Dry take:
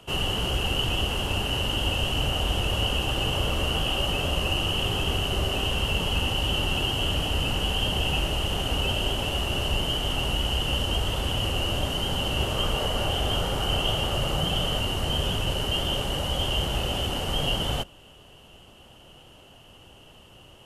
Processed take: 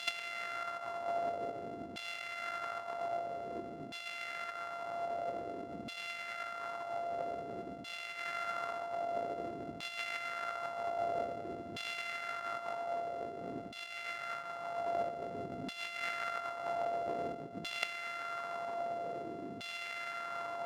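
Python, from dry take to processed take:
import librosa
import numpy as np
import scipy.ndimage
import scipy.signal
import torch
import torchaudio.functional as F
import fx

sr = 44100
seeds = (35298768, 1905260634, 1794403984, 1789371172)

y = np.r_[np.sort(x[:len(x) // 64 * 64].reshape(-1, 64), axis=1).ravel(), x[len(x) // 64 * 64:]]
y = scipy.signal.sosfilt(scipy.signal.butter(2, 130.0, 'highpass', fs=sr, output='sos'), y)
y = fx.over_compress(y, sr, threshold_db=-36.0, ratio=-0.5)
y = fx.filter_lfo_bandpass(y, sr, shape='saw_down', hz=0.51, low_hz=250.0, high_hz=3300.0, q=2.0)
y = F.gain(torch.from_numpy(y), 7.0).numpy()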